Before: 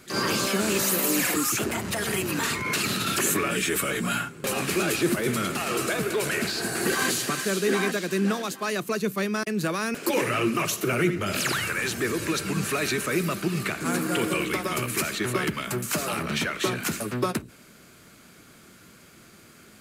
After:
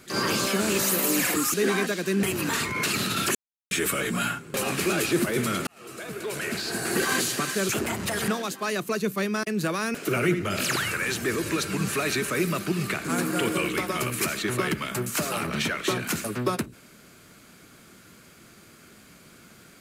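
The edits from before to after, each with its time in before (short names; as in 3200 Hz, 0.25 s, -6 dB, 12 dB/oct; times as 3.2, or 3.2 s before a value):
1.54–2.13 swap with 7.59–8.28
3.25–3.61 mute
5.57–6.78 fade in
10.05–10.81 cut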